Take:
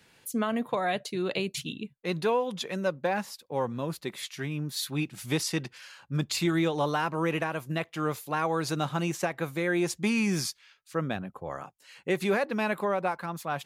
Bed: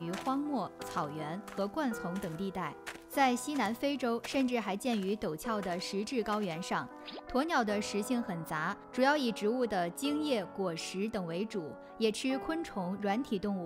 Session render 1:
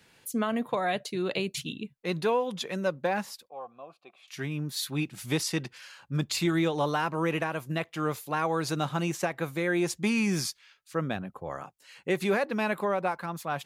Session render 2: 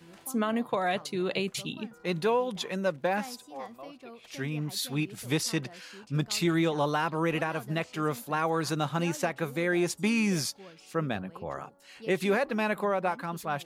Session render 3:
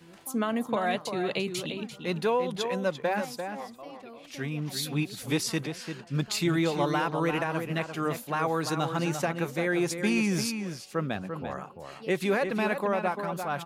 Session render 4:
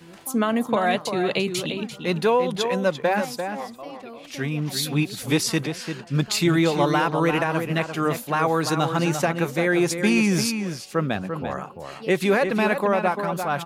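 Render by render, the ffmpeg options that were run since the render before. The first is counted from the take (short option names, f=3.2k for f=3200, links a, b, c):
-filter_complex "[0:a]asettb=1/sr,asplit=3[a][b][c];[a]atrim=end=3.484[d];[b]atrim=start=3.48:end=4.28,asetpts=PTS-STARTPTS,afade=t=in:d=0.004:c=qsin,afade=t=out:st=0.796:d=0.004:c=qsin,asplit=3[e][f][g];[e]bandpass=f=730:t=q:w=8,volume=0dB[h];[f]bandpass=f=1.09k:t=q:w=8,volume=-6dB[i];[g]bandpass=f=2.44k:t=q:w=8,volume=-9dB[j];[h][i][j]amix=inputs=3:normalize=0[k];[c]atrim=start=4.276[l];[d][k]acrossfade=d=0.004:c1=hsin:c2=qsin[m];[m][l]acrossfade=d=0.004:c1=qsin:c2=hsin"
-filter_complex "[1:a]volume=-15dB[a];[0:a][a]amix=inputs=2:normalize=0"
-filter_complex "[0:a]asplit=2[a][b];[b]adelay=344,volume=-7dB,highshelf=f=4k:g=-7.74[c];[a][c]amix=inputs=2:normalize=0"
-af "volume=6.5dB"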